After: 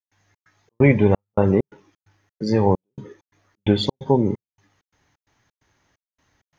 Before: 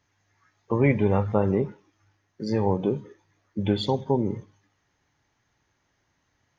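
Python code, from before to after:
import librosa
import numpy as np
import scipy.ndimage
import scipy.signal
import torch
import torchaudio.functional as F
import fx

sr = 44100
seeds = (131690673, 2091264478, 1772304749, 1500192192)

y = fx.step_gate(x, sr, bpm=131, pattern='.xx.xx.xxx..xx', floor_db=-60.0, edge_ms=4.5)
y = y * 10.0 ** (6.0 / 20.0)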